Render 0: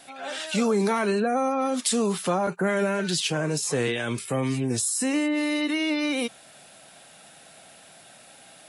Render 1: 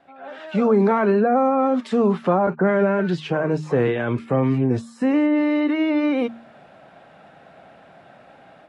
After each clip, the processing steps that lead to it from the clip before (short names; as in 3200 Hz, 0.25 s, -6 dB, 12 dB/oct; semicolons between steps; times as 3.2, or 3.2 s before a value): LPF 1400 Hz 12 dB/oct; de-hum 77.01 Hz, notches 4; AGC gain up to 9.5 dB; gain -2.5 dB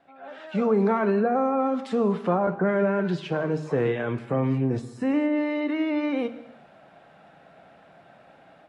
non-linear reverb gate 0.39 s falling, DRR 11.5 dB; gain -5 dB